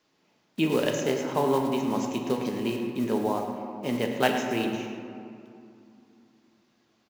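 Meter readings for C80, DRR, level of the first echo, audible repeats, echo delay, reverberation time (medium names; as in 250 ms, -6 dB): 4.5 dB, 1.5 dB, -12.0 dB, 1, 108 ms, 2.6 s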